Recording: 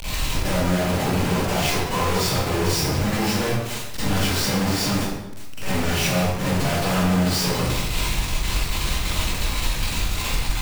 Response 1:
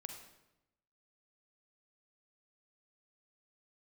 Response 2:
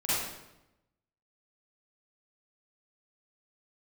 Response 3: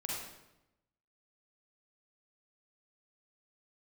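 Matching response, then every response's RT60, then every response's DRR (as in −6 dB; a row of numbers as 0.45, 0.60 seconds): 2; 0.90, 0.90, 0.90 seconds; 4.0, −12.5, −4.5 decibels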